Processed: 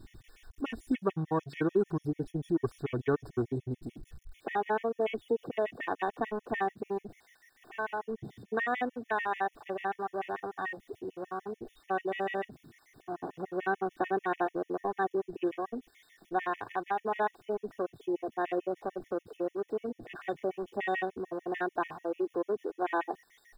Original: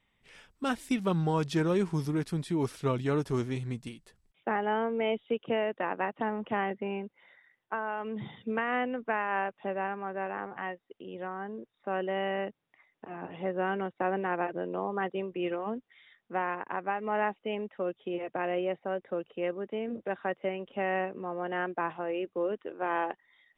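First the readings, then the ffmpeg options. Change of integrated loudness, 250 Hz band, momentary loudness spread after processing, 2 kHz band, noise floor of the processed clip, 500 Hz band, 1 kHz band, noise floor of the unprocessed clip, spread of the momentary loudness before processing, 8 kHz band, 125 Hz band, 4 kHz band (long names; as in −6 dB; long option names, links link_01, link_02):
−1.5 dB, −2.0 dB, 9 LU, −1.5 dB, −70 dBFS, −1.0 dB, −0.5 dB, −78 dBFS, 9 LU, can't be measured, −5.0 dB, −6.5 dB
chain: -af "aeval=exprs='val(0)+0.5*0.0112*sgn(val(0))':channel_layout=same,afwtdn=0.0126,aecho=1:1:2.7:0.45,afftfilt=real='re*gt(sin(2*PI*6.8*pts/sr)*(1-2*mod(floor(b*sr/1024/1800),2)),0)':imag='im*gt(sin(2*PI*6.8*pts/sr)*(1-2*mod(floor(b*sr/1024/1800),2)),0)':win_size=1024:overlap=0.75"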